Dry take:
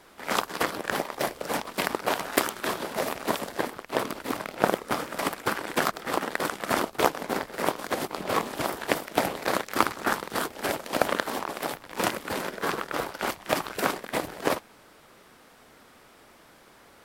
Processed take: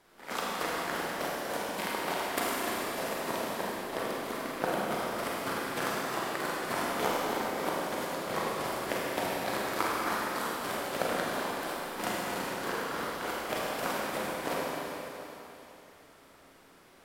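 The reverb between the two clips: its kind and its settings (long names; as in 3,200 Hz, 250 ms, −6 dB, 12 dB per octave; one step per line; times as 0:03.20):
four-comb reverb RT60 3.3 s, combs from 33 ms, DRR −5.5 dB
level −10.5 dB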